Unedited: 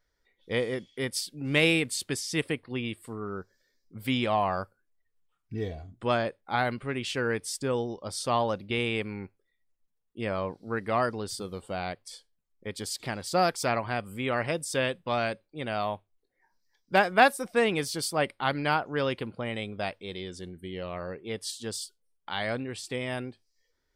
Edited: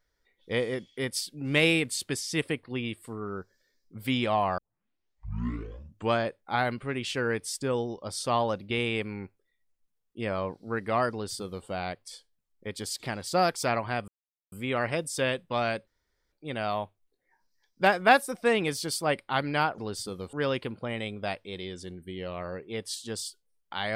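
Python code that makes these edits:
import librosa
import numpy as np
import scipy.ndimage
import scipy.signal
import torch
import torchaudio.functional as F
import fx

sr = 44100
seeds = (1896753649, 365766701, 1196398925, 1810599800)

y = fx.edit(x, sr, fx.tape_start(start_s=4.58, length_s=1.6),
    fx.duplicate(start_s=11.11, length_s=0.55, to_s=18.89),
    fx.insert_silence(at_s=14.08, length_s=0.44),
    fx.insert_room_tone(at_s=15.43, length_s=0.45), tone=tone)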